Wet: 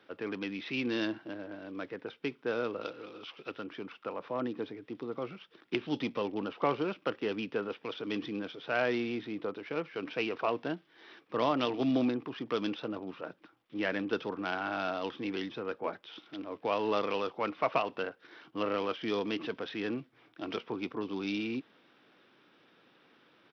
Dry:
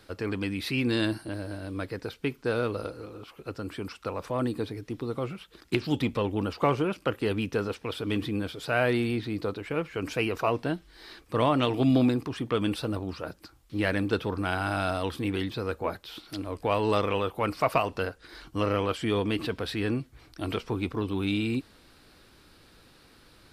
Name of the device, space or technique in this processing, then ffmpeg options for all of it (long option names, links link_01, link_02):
Bluetooth headset: -filter_complex "[0:a]asettb=1/sr,asplit=3[link_01][link_02][link_03];[link_01]atrim=end=2.814[link_04];[link_02]atrim=start=2.81:end=3.64,asetpts=PTS-STARTPTS,afade=type=in:duration=0.004:curve=qsin,afade=type=out:start_time=0.826:duration=0.004:curve=qsin,equalizer=frequency=4000:width_type=o:width=1.9:gain=13.5[link_05];[link_03]atrim=start=3.636[link_06];[link_04][link_05]acrossfade=duration=0.004:curve1=hsin:curve2=qsin[link_07];[link_07][link_06]acrossfade=duration=0.004:curve1=qsin:curve2=hsin,highpass=frequency=110:width=0.5412,highpass=frequency=110:width=1.3066,highpass=210,aresample=8000,aresample=44100,volume=-4.5dB" -ar 44100 -c:a sbc -b:a 64k